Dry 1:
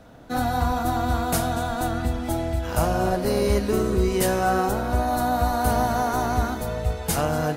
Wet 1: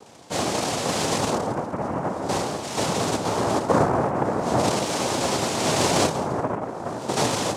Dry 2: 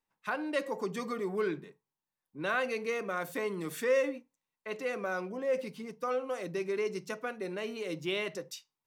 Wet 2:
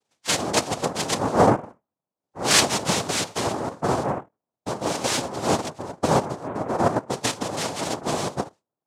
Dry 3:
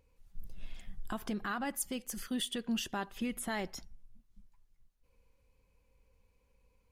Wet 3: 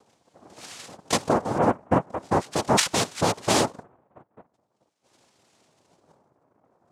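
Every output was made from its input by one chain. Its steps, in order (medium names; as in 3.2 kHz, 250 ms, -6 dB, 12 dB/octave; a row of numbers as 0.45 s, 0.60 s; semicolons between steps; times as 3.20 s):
LFO low-pass sine 0.42 Hz 250–2900 Hz; noise-vocoded speech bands 2; normalise loudness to -24 LUFS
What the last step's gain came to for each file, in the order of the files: -1.5 dB, +8.0 dB, +12.5 dB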